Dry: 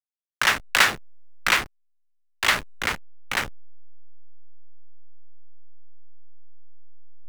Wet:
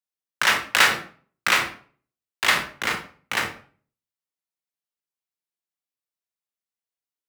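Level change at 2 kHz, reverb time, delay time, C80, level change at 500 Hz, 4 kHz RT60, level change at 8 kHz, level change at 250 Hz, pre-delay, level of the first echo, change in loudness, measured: +1.0 dB, 0.45 s, none, 14.0 dB, +1.5 dB, 0.35 s, +1.0 dB, +1.5 dB, 23 ms, none, +0.5 dB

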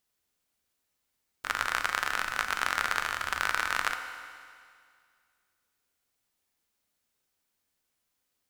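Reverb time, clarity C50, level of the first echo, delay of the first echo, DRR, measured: 2.1 s, 8.5 dB, none, none, 6.5 dB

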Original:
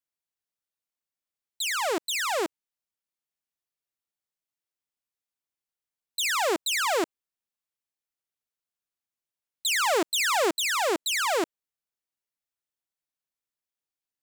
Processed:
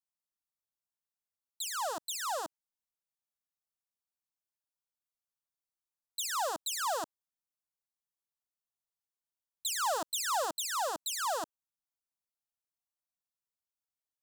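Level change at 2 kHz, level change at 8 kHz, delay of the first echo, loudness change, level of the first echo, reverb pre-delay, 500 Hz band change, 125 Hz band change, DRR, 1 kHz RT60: -13.5 dB, -5.5 dB, none, -8.0 dB, none, none, -10.5 dB, n/a, none, none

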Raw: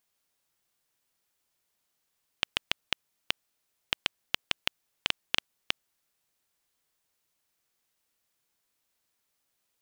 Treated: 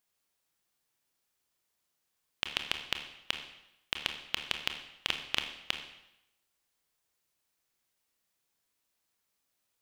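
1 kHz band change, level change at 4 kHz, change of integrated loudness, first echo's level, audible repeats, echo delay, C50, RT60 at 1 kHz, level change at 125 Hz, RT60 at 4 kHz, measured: -1.5 dB, -2.0 dB, -2.0 dB, none, none, none, 7.5 dB, 0.85 s, -1.5 dB, 0.80 s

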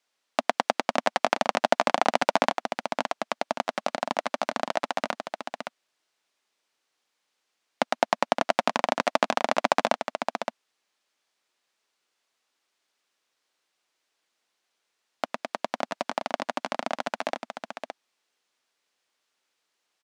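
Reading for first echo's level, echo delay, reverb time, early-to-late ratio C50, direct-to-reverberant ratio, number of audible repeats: -7.0 dB, 0.567 s, none, none, none, 1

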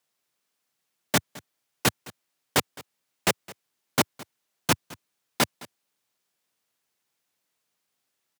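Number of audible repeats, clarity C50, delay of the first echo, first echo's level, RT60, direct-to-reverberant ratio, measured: 1, none, 0.213 s, -21.0 dB, none, none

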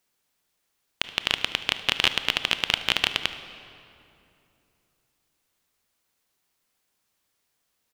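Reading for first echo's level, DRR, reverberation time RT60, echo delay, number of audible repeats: -19.5 dB, 10.5 dB, 2.9 s, 74 ms, 1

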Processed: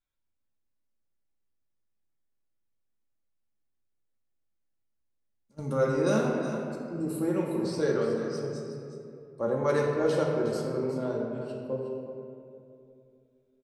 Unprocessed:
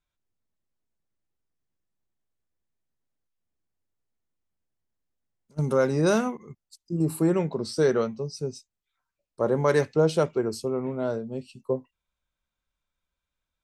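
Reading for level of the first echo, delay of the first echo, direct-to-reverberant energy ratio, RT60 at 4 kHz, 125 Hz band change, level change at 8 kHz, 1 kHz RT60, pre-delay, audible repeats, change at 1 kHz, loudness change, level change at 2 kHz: -9.5 dB, 0.364 s, -3.0 dB, 1.3 s, -5.0 dB, -6.0 dB, 2.3 s, 3 ms, 1, -3.0 dB, -3.5 dB, -3.0 dB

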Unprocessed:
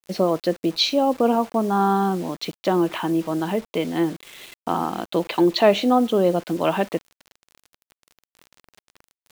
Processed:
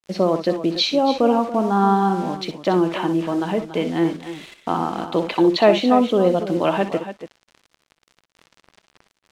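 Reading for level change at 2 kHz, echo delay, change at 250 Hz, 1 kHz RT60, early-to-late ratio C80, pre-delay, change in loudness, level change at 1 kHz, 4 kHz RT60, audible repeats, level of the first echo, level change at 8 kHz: +1.5 dB, 60 ms, +2.0 dB, none, none, none, +2.0 dB, +2.0 dB, none, 2, -13.0 dB, n/a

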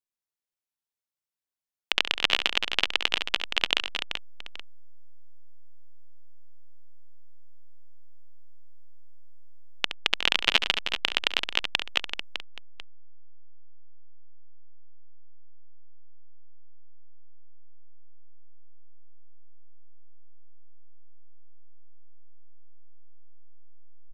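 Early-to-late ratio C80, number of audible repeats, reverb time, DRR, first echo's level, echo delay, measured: none, 4, none, none, -11.0 dB, 69 ms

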